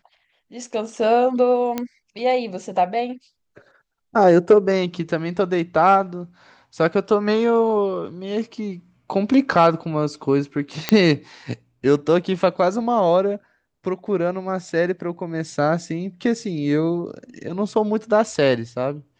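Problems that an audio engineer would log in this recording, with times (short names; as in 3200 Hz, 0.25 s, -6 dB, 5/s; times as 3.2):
1.78 pop -10 dBFS
10.89 pop -3 dBFS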